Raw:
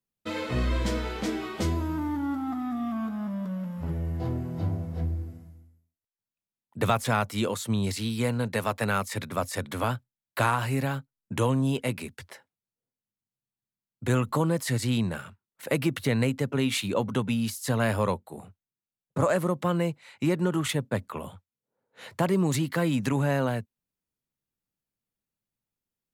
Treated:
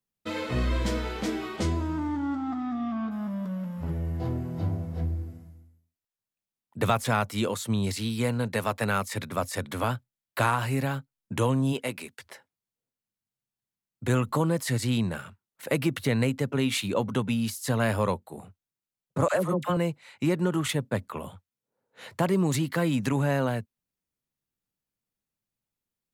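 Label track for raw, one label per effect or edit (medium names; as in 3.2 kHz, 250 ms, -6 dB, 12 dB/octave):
1.560000	3.100000	low-pass 11 kHz -> 5.1 kHz 24 dB/octave
11.720000	12.250000	high-pass 230 Hz -> 650 Hz 6 dB/octave
19.280000	19.770000	phase dispersion lows, late by 58 ms, half as late at 810 Hz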